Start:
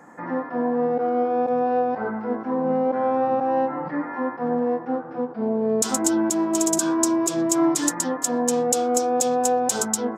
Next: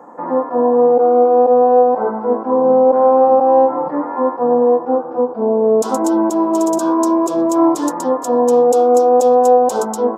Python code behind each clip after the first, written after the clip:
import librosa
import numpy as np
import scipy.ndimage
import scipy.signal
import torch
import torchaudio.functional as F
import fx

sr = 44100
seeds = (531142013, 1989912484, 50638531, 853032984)

y = fx.graphic_eq(x, sr, hz=(125, 250, 500, 1000, 2000, 8000), db=(-5, 5, 11, 12, -9, -6))
y = y * 10.0 ** (-1.5 / 20.0)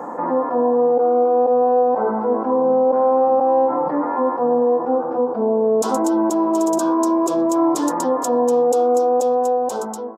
y = fx.fade_out_tail(x, sr, length_s=1.28)
y = fx.env_flatten(y, sr, amount_pct=50)
y = y * 10.0 ** (-6.0 / 20.0)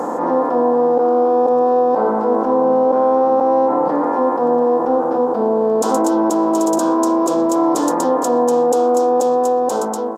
y = fx.bin_compress(x, sr, power=0.6)
y = fx.attack_slew(y, sr, db_per_s=100.0)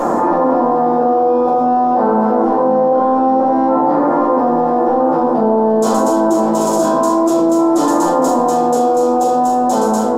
y = fx.add_hum(x, sr, base_hz=60, snr_db=34)
y = fx.room_shoebox(y, sr, seeds[0], volume_m3=120.0, walls='mixed', distance_m=2.7)
y = fx.env_flatten(y, sr, amount_pct=70)
y = y * 10.0 ** (-10.5 / 20.0)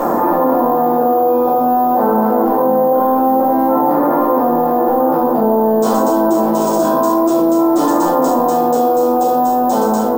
y = np.repeat(scipy.signal.resample_poly(x, 1, 3), 3)[:len(x)]